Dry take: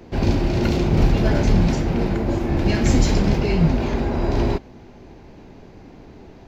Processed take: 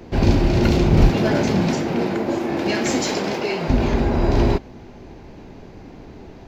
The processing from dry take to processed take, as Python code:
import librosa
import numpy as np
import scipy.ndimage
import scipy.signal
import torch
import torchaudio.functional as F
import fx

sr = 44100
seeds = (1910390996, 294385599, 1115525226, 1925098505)

y = fx.highpass(x, sr, hz=fx.line((1.09, 150.0), (3.68, 430.0)), slope=12, at=(1.09, 3.68), fade=0.02)
y = F.gain(torch.from_numpy(y), 3.0).numpy()